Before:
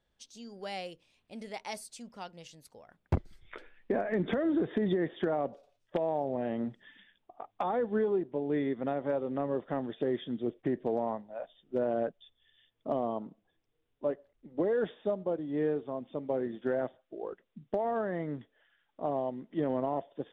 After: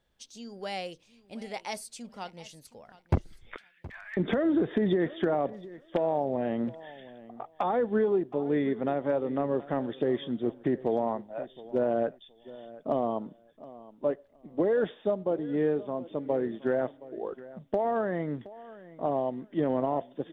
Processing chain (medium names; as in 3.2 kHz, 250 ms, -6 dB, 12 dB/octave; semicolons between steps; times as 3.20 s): 3.56–4.17 s: Bessel high-pass 1.9 kHz, order 8; feedback delay 720 ms, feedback 18%, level -18.5 dB; trim +3.5 dB